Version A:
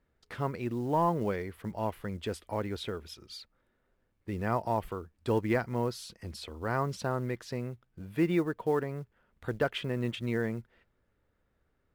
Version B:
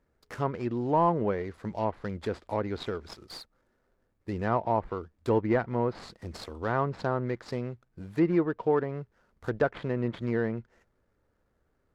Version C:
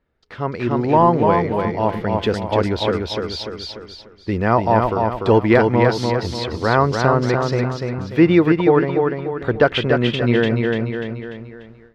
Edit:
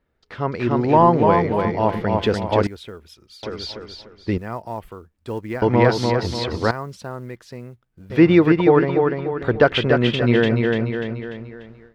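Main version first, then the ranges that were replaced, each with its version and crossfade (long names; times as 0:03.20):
C
0:02.67–0:03.43: punch in from A
0:04.38–0:05.62: punch in from A
0:06.71–0:08.10: punch in from A
not used: B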